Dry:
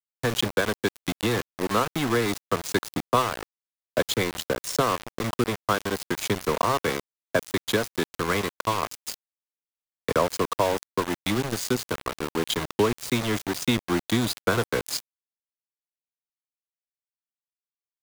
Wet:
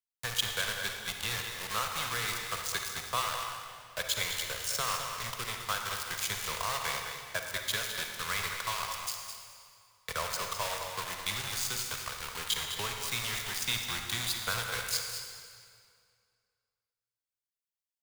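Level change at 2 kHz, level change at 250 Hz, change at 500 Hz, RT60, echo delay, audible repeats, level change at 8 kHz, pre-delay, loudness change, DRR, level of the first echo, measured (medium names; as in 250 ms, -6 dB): -4.0 dB, -23.5 dB, -17.5 dB, 2.2 s, 209 ms, 1, 0.0 dB, 38 ms, -6.5 dB, 1.5 dB, -8.0 dB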